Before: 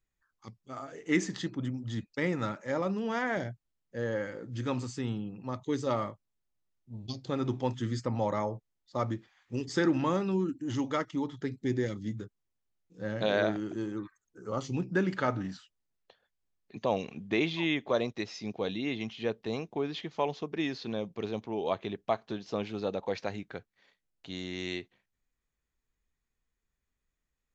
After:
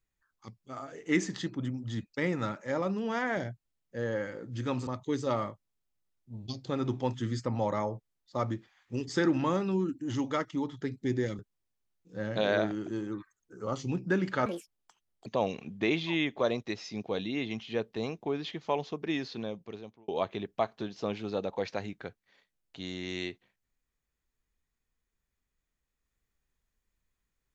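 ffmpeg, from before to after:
ffmpeg -i in.wav -filter_complex "[0:a]asplit=6[link_01][link_02][link_03][link_04][link_05][link_06];[link_01]atrim=end=4.872[link_07];[link_02]atrim=start=5.468:end=11.992[link_08];[link_03]atrim=start=12.238:end=15.314[link_09];[link_04]atrim=start=15.31:end=16.76,asetpts=PTS-STARTPTS,asetrate=79821,aresample=44100[link_10];[link_05]atrim=start=16.756:end=21.58,asetpts=PTS-STARTPTS,afade=type=out:start_time=4.004:duration=0.82[link_11];[link_06]atrim=start=21.58,asetpts=PTS-STARTPTS,afade=type=in:duration=0.004:curve=hsin[link_12];[link_07][link_08]acrossfade=duration=0.004:curve1=hsin:curve2=hsin[link_13];[link_13][link_09]acrossfade=duration=0.004:curve1=hsin:curve2=hsin[link_14];[link_14][link_10]acrossfade=duration=0.004:curve1=hsin:curve2=hsin[link_15];[link_11][link_12]concat=n=2:v=0:a=1[link_16];[link_15][link_16]acrossfade=duration=0.004:curve1=hsin:curve2=hsin" out.wav

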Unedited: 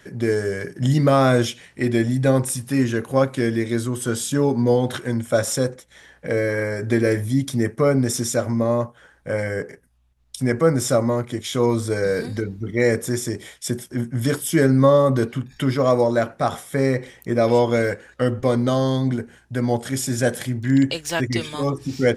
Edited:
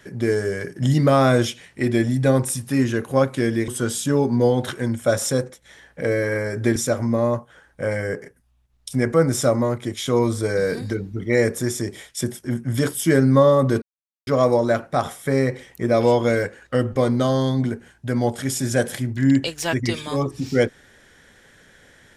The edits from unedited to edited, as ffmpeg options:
ffmpeg -i in.wav -filter_complex "[0:a]asplit=5[link_01][link_02][link_03][link_04][link_05];[link_01]atrim=end=3.682[link_06];[link_02]atrim=start=3.938:end=7.022[link_07];[link_03]atrim=start=8.228:end=15.29,asetpts=PTS-STARTPTS,afade=type=out:start_time=7.058:duration=0.004:curve=hsin[link_08];[link_04]atrim=start=15.29:end=15.74,asetpts=PTS-STARTPTS,volume=0[link_09];[link_05]atrim=start=15.74,asetpts=PTS-STARTPTS,afade=type=in:duration=0.004:curve=hsin[link_10];[link_06][link_07]acrossfade=duration=0.004:curve1=hsin:curve2=hsin[link_11];[link_08][link_09][link_10]concat=n=3:v=0:a=1[link_12];[link_11][link_12]acrossfade=duration=0.004:curve1=hsin:curve2=hsin" out.wav

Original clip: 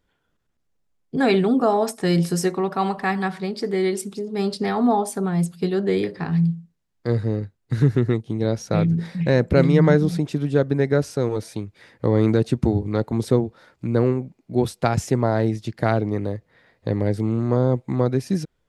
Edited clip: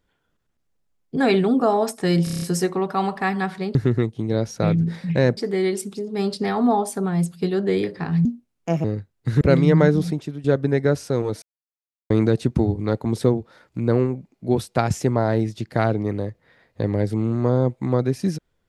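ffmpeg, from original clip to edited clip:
ffmpeg -i in.wav -filter_complex "[0:a]asplit=15[link_01][link_02][link_03][link_04][link_05][link_06][link_07][link_08][link_09][link_10][link_11][link_12][link_13][link_14][link_15];[link_01]atrim=end=2.272[link_16];[link_02]atrim=start=2.238:end=2.272[link_17];[link_03]atrim=start=2.238:end=2.272[link_18];[link_04]atrim=start=2.238:end=2.272[link_19];[link_05]atrim=start=2.238:end=2.272[link_20];[link_06]atrim=start=2.238:end=2.272[link_21];[link_07]atrim=start=2.238:end=3.572[link_22];[link_08]atrim=start=7.858:end=9.482[link_23];[link_09]atrim=start=3.568:end=6.454[link_24];[link_10]atrim=start=6.45:end=7.29,asetpts=PTS-STARTPTS,asetrate=62622,aresample=44100,atrim=end_sample=26087,asetpts=PTS-STARTPTS[link_25];[link_11]atrim=start=7.286:end=7.862[link_26];[link_12]atrim=start=9.478:end=10.51,asetpts=PTS-STARTPTS,afade=type=out:start_time=0.612:duration=0.42:silence=0.211349[link_27];[link_13]atrim=start=10.51:end=11.49,asetpts=PTS-STARTPTS,afade=type=in:duration=0.004:curve=hsin:silence=0.211349,afade=type=out:start_time=0.976:duration=0.004:curve=hsin[link_28];[link_14]atrim=start=11.49:end=12.17,asetpts=PTS-STARTPTS,volume=0[link_29];[link_15]atrim=start=12.17,asetpts=PTS-STARTPTS,afade=type=in:duration=0.004:curve=hsin[link_30];[link_16][link_17]acrossfade=duration=0.004:curve1=hsin:curve2=hsin[link_31];[link_31][link_18]acrossfade=duration=0.004:curve1=hsin:curve2=hsin[link_32];[link_32][link_19]acrossfade=duration=0.004:curve1=hsin:curve2=hsin[link_33];[link_33][link_20]acrossfade=duration=0.004:curve1=hsin:curve2=hsin[link_34];[link_34][link_21]acrossfade=duration=0.004:curve1=hsin:curve2=hsin[link_35];[link_35][link_22]acrossfade=duration=0.004:curve1=hsin:curve2=hsin[link_36];[link_36][link_23]acrossfade=duration=0.004:curve1=hsin:curve2=hsin[link_37];[link_37][link_24]acrossfade=duration=0.004:curve1=hsin:curve2=hsin[link_38];[link_38][link_25]acrossfade=duration=0.004:curve1=hsin:curve2=hsin[link_39];[link_39][link_26]acrossfade=duration=0.004:curve1=hsin:curve2=hsin[link_40];[link_27][link_28][link_29][link_30]concat=n=4:v=0:a=1[link_41];[link_40][link_41]acrossfade=duration=0.004:curve1=hsin:curve2=hsin" out.wav

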